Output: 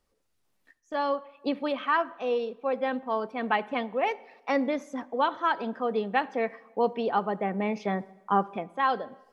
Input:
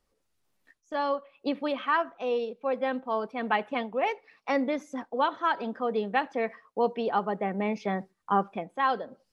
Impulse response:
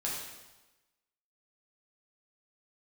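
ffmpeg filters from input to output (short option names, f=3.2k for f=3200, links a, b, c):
-filter_complex "[0:a]asplit=2[a][b];[1:a]atrim=start_sample=2205,asetrate=41454,aresample=44100,highshelf=f=3.5k:g=-10[c];[b][c]afir=irnorm=-1:irlink=0,volume=-21dB[d];[a][d]amix=inputs=2:normalize=0"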